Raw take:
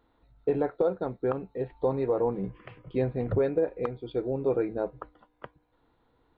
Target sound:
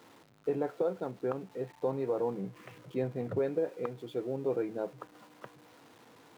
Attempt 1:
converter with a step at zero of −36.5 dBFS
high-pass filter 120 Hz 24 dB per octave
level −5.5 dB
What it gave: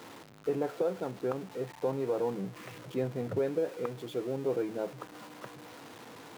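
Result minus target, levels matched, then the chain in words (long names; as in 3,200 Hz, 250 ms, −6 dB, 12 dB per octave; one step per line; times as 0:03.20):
converter with a step at zero: distortion +9 dB
converter with a step at zero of −46 dBFS
high-pass filter 120 Hz 24 dB per octave
level −5.5 dB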